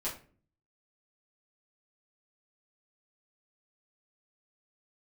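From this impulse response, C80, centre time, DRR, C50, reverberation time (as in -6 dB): 14.0 dB, 25 ms, -8.0 dB, 9.0 dB, 0.40 s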